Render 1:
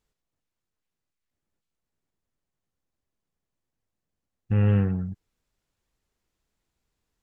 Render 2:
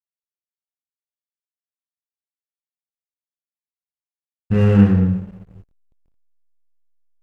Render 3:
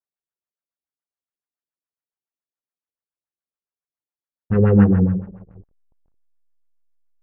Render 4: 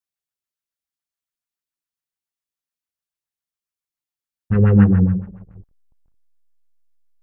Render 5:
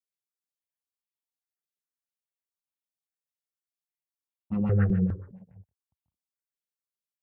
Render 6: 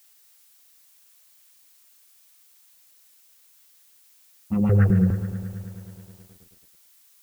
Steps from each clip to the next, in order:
coupled-rooms reverb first 0.66 s, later 2.4 s, from −20 dB, DRR −3.5 dB; mains hum 50 Hz, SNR 27 dB; slack as between gear wheels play −39 dBFS; level +5.5 dB
auto-filter low-pass sine 7.1 Hz 320–1,700 Hz; level −1.5 dB
parametric band 510 Hz −8.5 dB 2.4 octaves; level +4 dB
high-pass filter 78 Hz 24 dB per octave; step-sequenced phaser 4.9 Hz 260–1,600 Hz; level −6.5 dB
background noise blue −62 dBFS; feedback echo at a low word length 107 ms, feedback 80%, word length 9 bits, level −13.5 dB; level +5 dB

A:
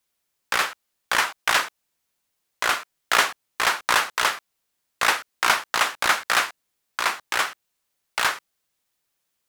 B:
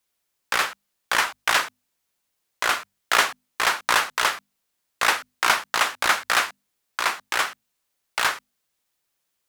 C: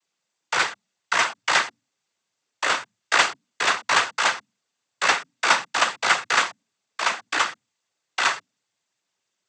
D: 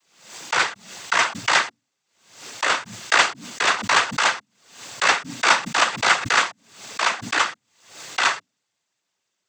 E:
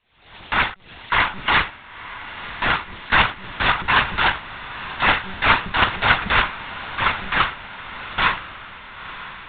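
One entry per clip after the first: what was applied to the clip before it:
mains-hum notches 50/100/150/200/250 Hz
cochlear-implant simulation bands 16; level +1.5 dB
background raised ahead of every attack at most 96 dB per second; level +1.5 dB
one-pitch LPC vocoder at 8 kHz 190 Hz; feedback delay with all-pass diffusion 974 ms, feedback 56%, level −14 dB; level +1.5 dB

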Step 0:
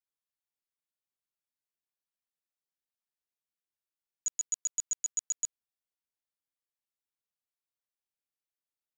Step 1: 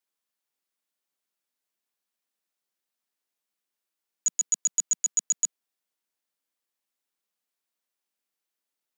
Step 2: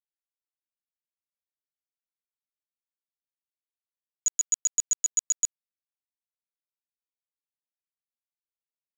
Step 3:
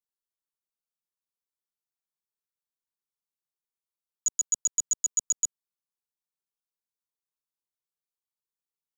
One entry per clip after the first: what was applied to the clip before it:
Butterworth high-pass 180 Hz; level +7.5 dB
dead-zone distortion −46.5 dBFS
phaser with its sweep stopped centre 420 Hz, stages 8

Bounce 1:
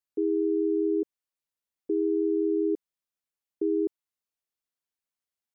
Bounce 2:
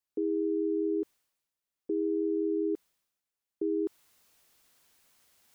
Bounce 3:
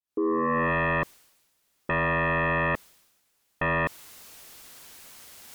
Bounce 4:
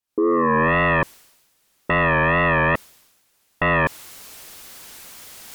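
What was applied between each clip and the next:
reversed playback; upward compression, threshold −47 dBFS; reversed playback; brickwall limiter −24.5 dBFS, peak gain reduction 5 dB; level +1 dB
fade in at the beginning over 0.73 s; sine wavefolder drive 13 dB, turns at −23 dBFS; level +1.5 dB
tape wow and flutter 91 cents; level +7 dB

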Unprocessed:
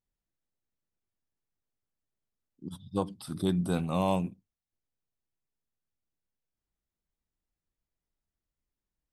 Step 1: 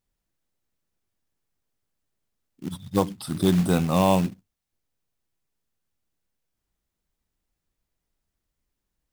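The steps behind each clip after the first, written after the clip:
floating-point word with a short mantissa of 2 bits
level +8 dB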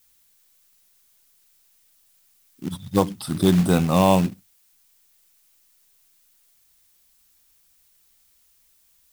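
background noise blue −64 dBFS
level +3 dB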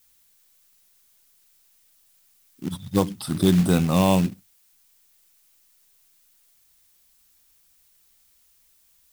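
dynamic equaliser 810 Hz, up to −5 dB, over −28 dBFS, Q 0.82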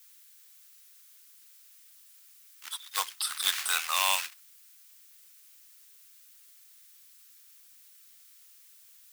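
high-pass filter 1,200 Hz 24 dB per octave
level +4.5 dB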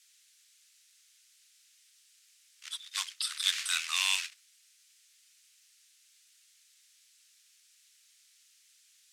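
flat-topped band-pass 4,000 Hz, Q 0.62

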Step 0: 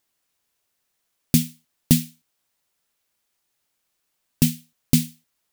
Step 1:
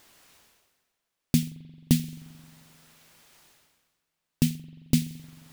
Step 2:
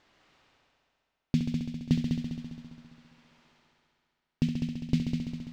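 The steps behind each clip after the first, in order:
high-shelf EQ 6,400 Hz −7.5 dB; reversed playback; upward compression, threshold −33 dBFS; reversed playback; convolution reverb RT60 2.1 s, pre-delay 44 ms, DRR 17.5 dB; level −4 dB
high-frequency loss of the air 180 metres; on a send: echo machine with several playback heads 67 ms, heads all three, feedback 62%, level −9 dB; on the sum: level −4 dB

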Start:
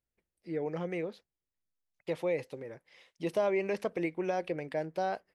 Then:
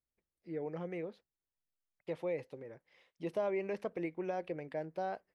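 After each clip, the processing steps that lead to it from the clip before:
high-shelf EQ 3,300 Hz −9 dB
level −5 dB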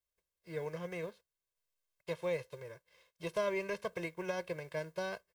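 spectral envelope flattened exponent 0.6
comb filter 1.9 ms, depth 93%
level −3 dB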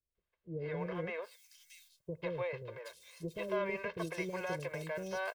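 brickwall limiter −30 dBFS, peak gain reduction 6.5 dB
three-band delay without the direct sound lows, mids, highs 150/780 ms, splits 470/3,600 Hz
level +5 dB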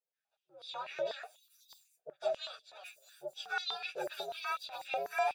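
partials spread apart or drawn together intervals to 125%
high-pass on a step sequencer 8.1 Hz 530–4,000 Hz
level +1 dB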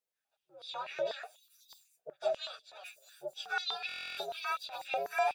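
buffer that repeats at 0:03.87, samples 1,024, times 12
level +1.5 dB

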